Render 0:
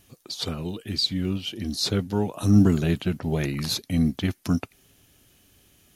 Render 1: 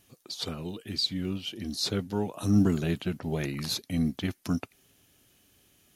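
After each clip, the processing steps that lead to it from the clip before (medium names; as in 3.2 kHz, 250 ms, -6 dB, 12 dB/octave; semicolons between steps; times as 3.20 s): bass shelf 85 Hz -8 dB; trim -4 dB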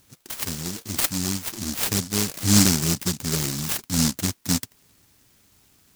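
delay time shaken by noise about 6 kHz, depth 0.49 ms; trim +5.5 dB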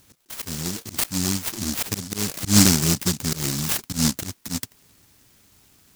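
slow attack 133 ms; trim +2.5 dB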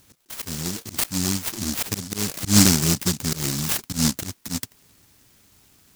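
no audible change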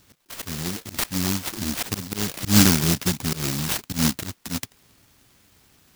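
sampling jitter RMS 0.028 ms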